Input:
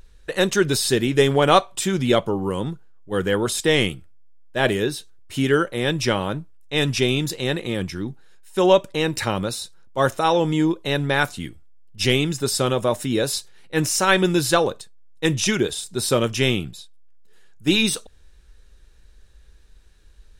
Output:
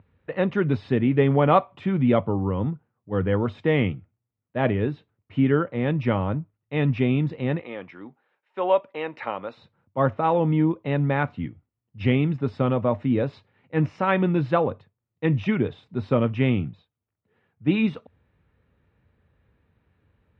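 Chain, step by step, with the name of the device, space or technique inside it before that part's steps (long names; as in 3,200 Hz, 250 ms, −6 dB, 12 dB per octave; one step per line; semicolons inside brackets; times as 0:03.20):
0:07.59–0:09.57: high-pass filter 520 Hz 12 dB per octave
bass cabinet (loudspeaker in its box 86–2,200 Hz, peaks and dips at 96 Hz +10 dB, 150 Hz +4 dB, 250 Hz +6 dB, 370 Hz −5 dB, 1,600 Hz −8 dB)
level −2 dB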